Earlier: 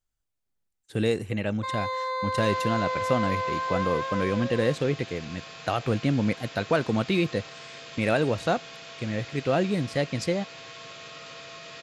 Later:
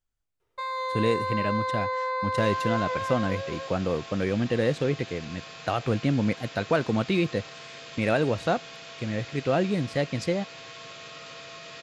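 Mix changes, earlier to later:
speech: add high shelf 5500 Hz -6 dB; first sound: entry -1.05 s

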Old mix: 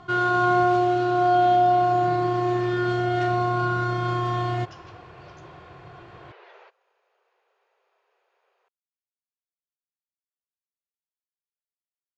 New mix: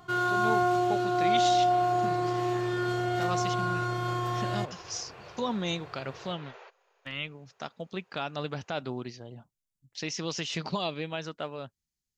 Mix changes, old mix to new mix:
speech: unmuted; first sound -6.0 dB; master: remove air absorption 130 m

